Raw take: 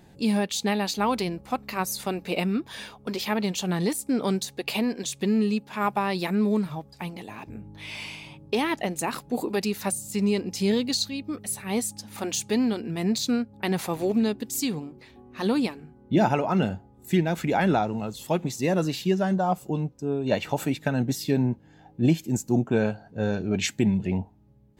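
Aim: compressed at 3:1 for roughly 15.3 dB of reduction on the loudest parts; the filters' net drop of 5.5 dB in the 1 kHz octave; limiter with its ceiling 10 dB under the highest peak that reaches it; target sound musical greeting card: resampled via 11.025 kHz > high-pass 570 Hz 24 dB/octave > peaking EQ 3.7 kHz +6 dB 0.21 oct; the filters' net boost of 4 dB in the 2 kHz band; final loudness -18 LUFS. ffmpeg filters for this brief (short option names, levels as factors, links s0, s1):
-af "equalizer=f=1000:t=o:g=-9,equalizer=f=2000:t=o:g=7.5,acompressor=threshold=0.0112:ratio=3,alimiter=level_in=1.88:limit=0.0631:level=0:latency=1,volume=0.531,aresample=11025,aresample=44100,highpass=f=570:w=0.5412,highpass=f=570:w=1.3066,equalizer=f=3700:t=o:w=0.21:g=6,volume=20"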